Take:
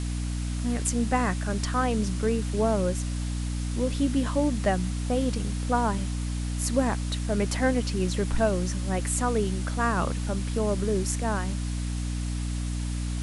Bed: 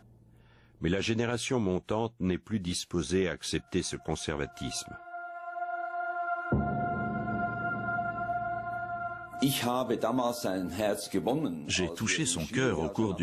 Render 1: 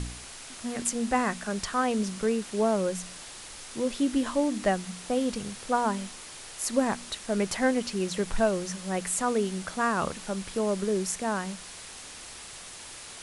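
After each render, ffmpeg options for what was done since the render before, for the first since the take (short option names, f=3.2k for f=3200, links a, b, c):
-af "bandreject=f=60:t=h:w=4,bandreject=f=120:t=h:w=4,bandreject=f=180:t=h:w=4,bandreject=f=240:t=h:w=4,bandreject=f=300:t=h:w=4"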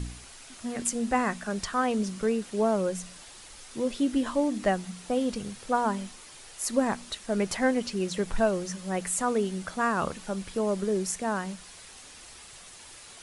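-af "afftdn=nr=6:nf=-44"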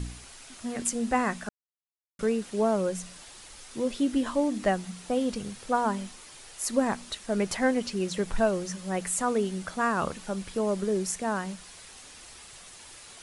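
-filter_complex "[0:a]asplit=3[a][b][c];[a]atrim=end=1.49,asetpts=PTS-STARTPTS,afade=t=out:st=1.486:d=0.004:c=hsin[d];[b]atrim=start=1.49:end=2.19,asetpts=PTS-STARTPTS,volume=0[e];[c]atrim=start=2.19,asetpts=PTS-STARTPTS,afade=t=in:d=0.004:c=hsin[f];[d][e][f]concat=n=3:v=0:a=1"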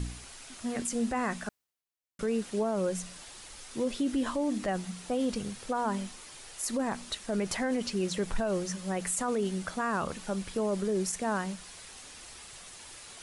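-af "alimiter=limit=-22dB:level=0:latency=1:release=22,areverse,acompressor=mode=upward:threshold=-48dB:ratio=2.5,areverse"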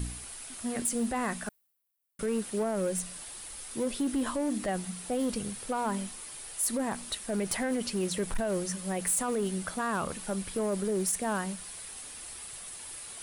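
-af "aexciter=amount=2.3:drive=8.4:freq=8.7k,asoftclip=type=hard:threshold=-24.5dB"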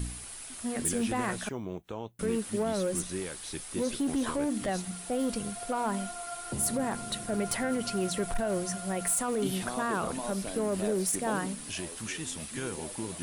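-filter_complex "[1:a]volume=-8.5dB[a];[0:a][a]amix=inputs=2:normalize=0"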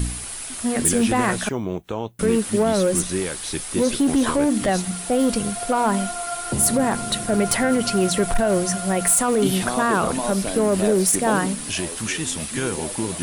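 -af "volume=11dB"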